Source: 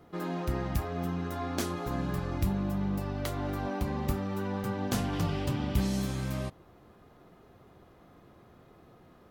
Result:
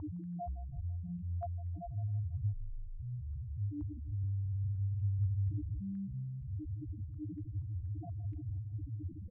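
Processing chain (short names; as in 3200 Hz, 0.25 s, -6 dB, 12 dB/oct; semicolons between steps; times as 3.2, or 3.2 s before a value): infinite clipping; low shelf 180 Hz +9.5 dB; limiter -30.5 dBFS, peak gain reduction 7 dB; 1.94–3.59 frequency shift -170 Hz; resonator 100 Hz, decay 0.25 s, harmonics odd, mix 80%; loudest bins only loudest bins 1; 4.72–5.6 doubler 28 ms -7 dB; feedback echo 0.164 s, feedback 51%, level -18 dB; stepped low-pass 4.2 Hz 950–2600 Hz; gain +12.5 dB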